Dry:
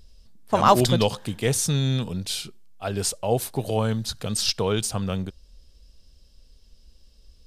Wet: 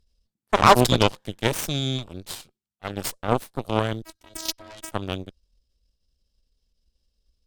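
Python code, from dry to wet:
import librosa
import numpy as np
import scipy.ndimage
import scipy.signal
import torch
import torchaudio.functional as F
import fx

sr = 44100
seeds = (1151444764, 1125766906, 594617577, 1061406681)

y = fx.robotise(x, sr, hz=322.0, at=(4.02, 4.92))
y = fx.cheby_harmonics(y, sr, harmonics=(4, 7, 8), levels_db=(-23, -18, -22), full_scale_db=-3.0)
y = y * 10.0 ** (2.0 / 20.0)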